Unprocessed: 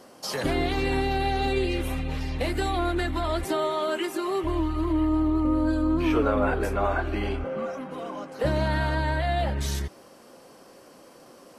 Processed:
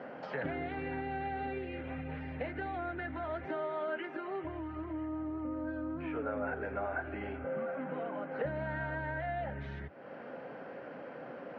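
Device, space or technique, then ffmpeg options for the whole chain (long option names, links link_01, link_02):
bass amplifier: -af "acompressor=threshold=-42dB:ratio=4,highpass=frequency=90:width=0.5412,highpass=frequency=90:width=1.3066,equalizer=frequency=100:width_type=q:width=4:gain=-9,equalizer=frequency=210:width_type=q:width=4:gain=-4,equalizer=frequency=350:width_type=q:width=4:gain=-8,equalizer=frequency=1100:width_type=q:width=4:gain=-10,equalizer=frequency=1500:width_type=q:width=4:gain=4,lowpass=frequency=2200:width=0.5412,lowpass=frequency=2200:width=1.3066,volume=7.5dB"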